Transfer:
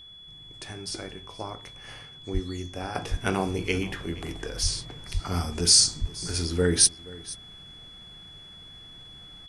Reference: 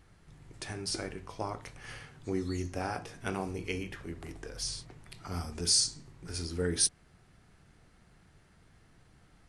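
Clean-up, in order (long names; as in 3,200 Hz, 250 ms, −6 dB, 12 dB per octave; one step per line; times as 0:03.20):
notch filter 3,400 Hz, Q 30
high-pass at the plosives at 0:02.33/0:03.10/0:04.62/0:05.13/0:06.00
echo removal 475 ms −20 dB
level correction −8.5 dB, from 0:02.95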